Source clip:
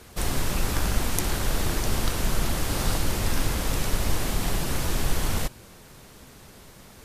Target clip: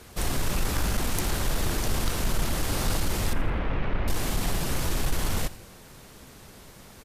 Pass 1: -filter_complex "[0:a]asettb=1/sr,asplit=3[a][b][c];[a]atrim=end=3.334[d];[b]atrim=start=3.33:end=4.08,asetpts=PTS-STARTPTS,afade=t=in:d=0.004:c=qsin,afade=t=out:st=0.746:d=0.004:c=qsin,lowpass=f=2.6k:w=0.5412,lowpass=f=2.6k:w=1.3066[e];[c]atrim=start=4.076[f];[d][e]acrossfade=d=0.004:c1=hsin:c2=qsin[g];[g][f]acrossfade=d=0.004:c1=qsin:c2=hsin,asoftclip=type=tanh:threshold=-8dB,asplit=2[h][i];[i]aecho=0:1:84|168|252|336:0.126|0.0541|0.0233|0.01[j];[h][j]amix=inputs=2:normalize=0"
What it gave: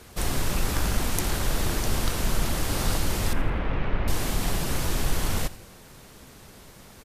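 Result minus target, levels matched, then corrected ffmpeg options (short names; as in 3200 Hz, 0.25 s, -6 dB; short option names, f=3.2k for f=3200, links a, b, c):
soft clip: distortion -12 dB
-filter_complex "[0:a]asettb=1/sr,asplit=3[a][b][c];[a]atrim=end=3.334[d];[b]atrim=start=3.33:end=4.08,asetpts=PTS-STARTPTS,afade=t=in:d=0.004:c=qsin,afade=t=out:st=0.746:d=0.004:c=qsin,lowpass=f=2.6k:w=0.5412,lowpass=f=2.6k:w=1.3066[e];[c]atrim=start=4.076[f];[d][e]acrossfade=d=0.004:c1=hsin:c2=qsin[g];[g][f]acrossfade=d=0.004:c1=qsin:c2=hsin,asoftclip=type=tanh:threshold=-16dB,asplit=2[h][i];[i]aecho=0:1:84|168|252|336:0.126|0.0541|0.0233|0.01[j];[h][j]amix=inputs=2:normalize=0"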